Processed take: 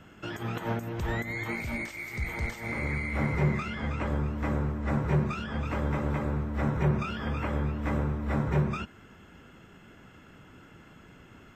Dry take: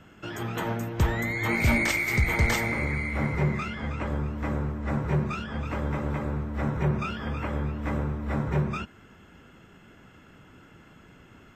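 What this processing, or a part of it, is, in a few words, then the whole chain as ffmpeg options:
de-esser from a sidechain: -filter_complex "[0:a]asplit=2[link_01][link_02];[link_02]highpass=7000,apad=whole_len=509728[link_03];[link_01][link_03]sidechaincompress=threshold=-53dB:ratio=6:attack=4.9:release=92"

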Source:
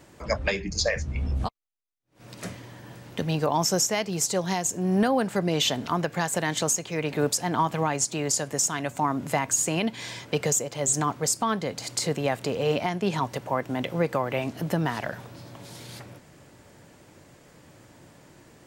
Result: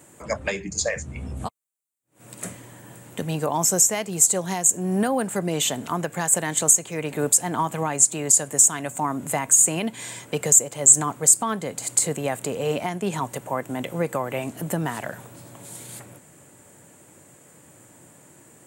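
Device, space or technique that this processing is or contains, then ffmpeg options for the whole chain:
budget condenser microphone: -af "highpass=100,highshelf=frequency=6400:width_type=q:width=3:gain=7.5"

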